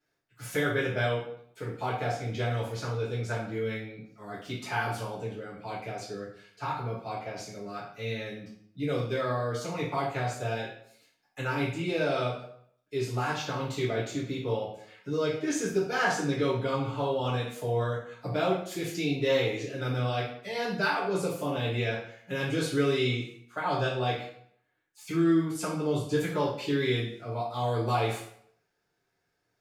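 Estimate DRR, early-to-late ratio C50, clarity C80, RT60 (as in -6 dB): -9.5 dB, 4.0 dB, 8.5 dB, 0.65 s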